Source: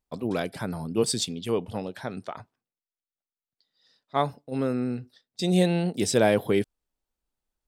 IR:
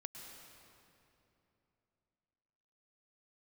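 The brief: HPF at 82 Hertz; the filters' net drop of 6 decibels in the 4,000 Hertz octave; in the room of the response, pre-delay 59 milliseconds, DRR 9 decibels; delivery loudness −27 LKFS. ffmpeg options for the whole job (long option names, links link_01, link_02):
-filter_complex "[0:a]highpass=82,equalizer=frequency=4000:width_type=o:gain=-7.5,asplit=2[link_01][link_02];[1:a]atrim=start_sample=2205,adelay=59[link_03];[link_02][link_03]afir=irnorm=-1:irlink=0,volume=-5.5dB[link_04];[link_01][link_04]amix=inputs=2:normalize=0,volume=0.5dB"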